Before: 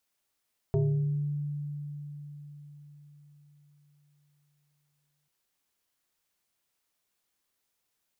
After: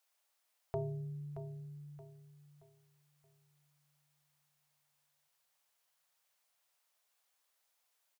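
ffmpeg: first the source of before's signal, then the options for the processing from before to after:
-f lavfi -i "aevalsrc='0.0841*pow(10,-3*t/4.8)*sin(2*PI*146*t+1.3*pow(10,-3*t/0.97)*sin(2*PI*1.77*146*t))':duration=4.54:sample_rate=44100"
-filter_complex "[0:a]lowshelf=frequency=430:width_type=q:width=1.5:gain=-12.5,asplit=2[link_01][link_02];[link_02]aecho=0:1:625|1250|1875|2500:0.282|0.0986|0.0345|0.0121[link_03];[link_01][link_03]amix=inputs=2:normalize=0"

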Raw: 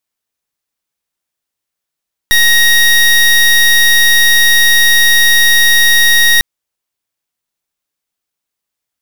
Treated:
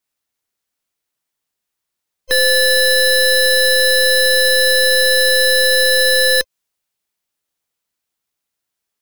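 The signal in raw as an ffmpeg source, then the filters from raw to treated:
-f lavfi -i "aevalsrc='0.422*(2*lt(mod(1880*t,1),0.25)-1)':duration=4.1:sample_rate=44100"
-af "afftfilt=real='real(if(between(b,1,1008),(2*floor((b-1)/24)+1)*24-b,b),0)':imag='imag(if(between(b,1,1008),(2*floor((b-1)/24)+1)*24-b,b),0)*if(between(b,1,1008),-1,1)':win_size=2048:overlap=0.75,alimiter=limit=-8.5dB:level=0:latency=1:release=122,adynamicequalizer=threshold=0.0316:dfrequency=2100:dqfactor=0.7:tfrequency=2100:tqfactor=0.7:attack=5:release=100:ratio=0.375:range=1.5:mode=boostabove:tftype=highshelf"

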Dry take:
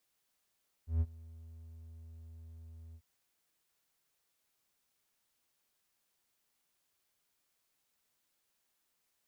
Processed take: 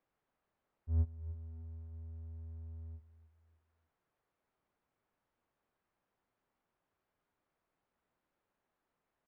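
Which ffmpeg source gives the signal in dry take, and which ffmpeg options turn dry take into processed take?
-f lavfi -i "aevalsrc='0.0668*(1-4*abs(mod(81.4*t+0.25,1)-0.5))':duration=2.143:sample_rate=44100,afade=type=in:duration=0.139,afade=type=out:start_time=0.139:duration=0.046:silence=0.0708,afade=type=out:start_time=2.08:duration=0.063"
-filter_complex "[0:a]aecho=1:1:297|594|891:0.141|0.0537|0.0204,asplit=2[link_01][link_02];[link_02]alimiter=level_in=10dB:limit=-24dB:level=0:latency=1:release=434,volume=-10dB,volume=-3dB[link_03];[link_01][link_03]amix=inputs=2:normalize=0,lowpass=1300"

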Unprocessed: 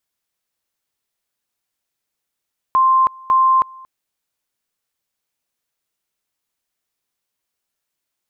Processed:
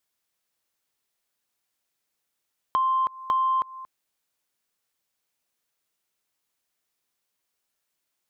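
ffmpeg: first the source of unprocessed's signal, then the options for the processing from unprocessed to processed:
-f lavfi -i "aevalsrc='pow(10,(-10-25.5*gte(mod(t,0.55),0.32))/20)*sin(2*PI*1050*t)':duration=1.1:sample_rate=44100"
-af "lowshelf=frequency=130:gain=-5,acompressor=threshold=-21dB:ratio=10,asoftclip=type=tanh:threshold=-14dB"

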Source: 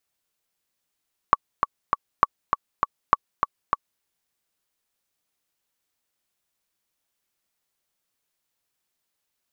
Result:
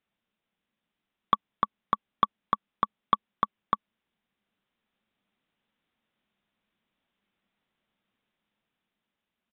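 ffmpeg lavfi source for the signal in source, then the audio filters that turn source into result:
-f lavfi -i "aevalsrc='pow(10,(-1.5-5.5*gte(mod(t,3*60/200),60/200))/20)*sin(2*PI*1130*mod(t,60/200))*exp(-6.91*mod(t,60/200)/0.03)':duration=2.7:sample_rate=44100"
-af "dynaudnorm=framelen=330:gausssize=7:maxgain=3.5dB,aresample=8000,asoftclip=type=tanh:threshold=-10.5dB,aresample=44100,equalizer=frequency=210:width=2.3:gain=12.5"

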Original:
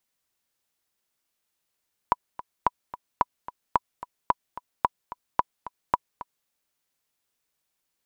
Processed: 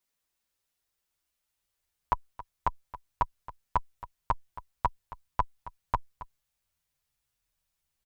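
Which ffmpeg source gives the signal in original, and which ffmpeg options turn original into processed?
-f lavfi -i "aevalsrc='pow(10,(-6-16*gte(mod(t,2*60/220),60/220))/20)*sin(2*PI*983*mod(t,60/220))*exp(-6.91*mod(t,60/220)/0.03)':duration=4.36:sample_rate=44100"
-filter_complex "[0:a]asubboost=boost=10:cutoff=92,asplit=2[link_01][link_02];[link_02]adelay=8,afreqshift=-1.2[link_03];[link_01][link_03]amix=inputs=2:normalize=1"

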